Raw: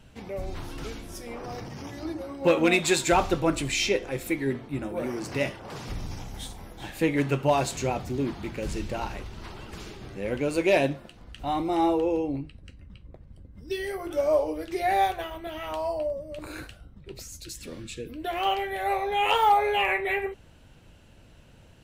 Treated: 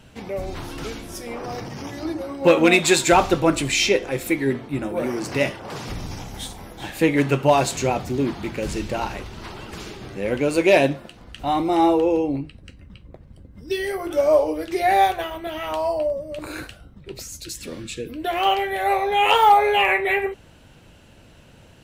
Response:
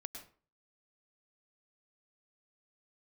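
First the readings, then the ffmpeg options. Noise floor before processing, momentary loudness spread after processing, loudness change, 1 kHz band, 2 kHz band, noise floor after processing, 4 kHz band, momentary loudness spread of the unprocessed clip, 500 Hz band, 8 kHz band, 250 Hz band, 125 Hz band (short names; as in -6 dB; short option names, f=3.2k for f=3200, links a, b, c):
-53 dBFS, 18 LU, +6.5 dB, +6.5 dB, +6.5 dB, -49 dBFS, +6.5 dB, 18 LU, +6.5 dB, +6.5 dB, +6.0 dB, +4.5 dB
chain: -af "lowshelf=f=78:g=-7.5,volume=6.5dB"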